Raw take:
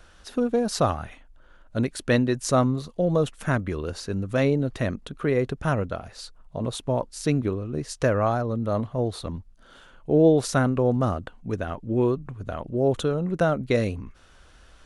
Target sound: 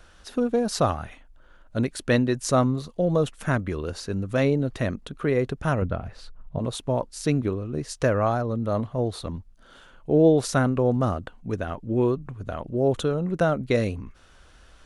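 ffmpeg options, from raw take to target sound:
ffmpeg -i in.wav -filter_complex "[0:a]asettb=1/sr,asplit=3[link_01][link_02][link_03];[link_01]atrim=end=5.824[link_04];[link_02]atrim=start=5.82:end=6.59,asetpts=PTS-STARTPTS,afade=type=in:duration=0.004:curve=qsin,afade=type=out:start_time=0.766:duration=0.004:curve=qsin,bass=frequency=250:gain=8,treble=frequency=4000:gain=-13[link_05];[link_03]atrim=start=6.586[link_06];[link_04][link_05]acrossfade=duration=0.004:curve1=hsin:curve2=qsin[link_07];[link_07][link_06]acrossfade=duration=0.004:curve1=qsin:curve2=hsin" out.wav

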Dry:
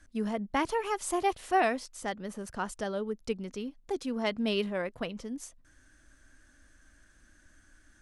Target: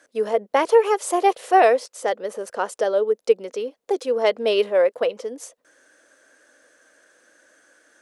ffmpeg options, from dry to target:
ffmpeg -i in.wav -af "highpass=frequency=490:width_type=q:width=4.9,volume=6.5dB" out.wav

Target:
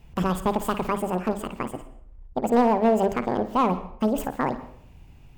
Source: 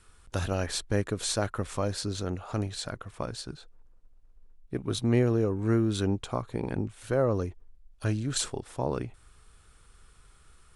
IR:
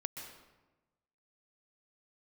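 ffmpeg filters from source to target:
-filter_complex "[0:a]tiltshelf=frequency=1100:gain=8,bandreject=frequency=50:width_type=h:width=6,bandreject=frequency=100:width_type=h:width=6,bandreject=frequency=150:width_type=h:width=6,asoftclip=type=hard:threshold=-13.5dB,asplit=2[link_01][link_02];[1:a]atrim=start_sample=2205,adelay=109[link_03];[link_02][link_03]afir=irnorm=-1:irlink=0,volume=-10.5dB[link_04];[link_01][link_04]amix=inputs=2:normalize=0,asetrate=88200,aresample=44100"

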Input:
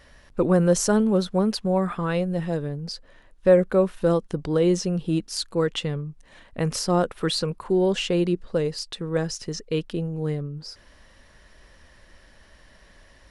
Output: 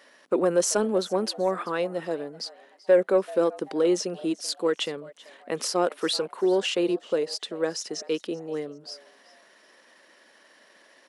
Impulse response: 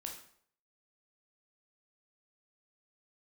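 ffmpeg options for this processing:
-filter_complex "[0:a]highpass=frequency=270:width=0.5412,highpass=frequency=270:width=1.3066,asoftclip=type=tanh:threshold=-9.5dB,atempo=1.2,asplit=2[link_01][link_02];[link_02]asplit=2[link_03][link_04];[link_03]adelay=385,afreqshift=120,volume=-21dB[link_05];[link_04]adelay=770,afreqshift=240,volume=-30.6dB[link_06];[link_05][link_06]amix=inputs=2:normalize=0[link_07];[link_01][link_07]amix=inputs=2:normalize=0"

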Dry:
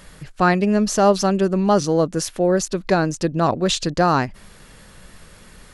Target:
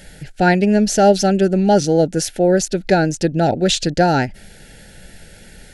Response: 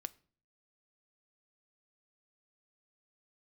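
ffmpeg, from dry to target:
-af "asuperstop=centerf=1100:order=12:qfactor=2.4,volume=3.5dB"

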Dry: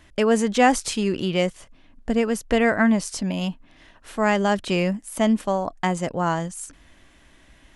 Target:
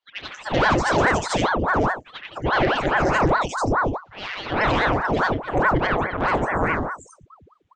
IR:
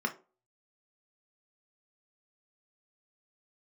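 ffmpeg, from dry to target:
-filter_complex "[0:a]afftfilt=real='re':imag='-im':win_size=8192:overlap=0.75,afftdn=noise_reduction=27:noise_floor=-37,highshelf=frequency=2400:gain=2,acontrast=41,aresample=16000,asoftclip=type=tanh:threshold=-17dB,aresample=44100,asplit=2[link_01][link_02];[link_02]adelay=28,volume=-12dB[link_03];[link_01][link_03]amix=inputs=2:normalize=0,acrossover=split=1500|5200[link_04][link_05][link_06];[link_04]adelay=390[link_07];[link_06]adelay=440[link_08];[link_07][link_05][link_08]amix=inputs=3:normalize=0,aeval=exprs='val(0)*sin(2*PI*690*n/s+690*0.9/4.8*sin(2*PI*4.8*n/s))':channel_layout=same,volume=5.5dB"

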